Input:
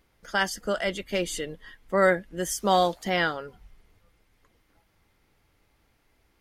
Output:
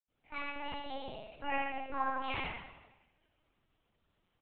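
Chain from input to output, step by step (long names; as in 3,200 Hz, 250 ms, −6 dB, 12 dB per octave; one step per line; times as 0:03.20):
mains-hum notches 60/120/180/240/300/360/420 Hz
change of speed 1.45×
repeating echo 85 ms, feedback 32%, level −4.5 dB
convolution reverb RT60 1.0 s, pre-delay 76 ms
linear-prediction vocoder at 8 kHz pitch kept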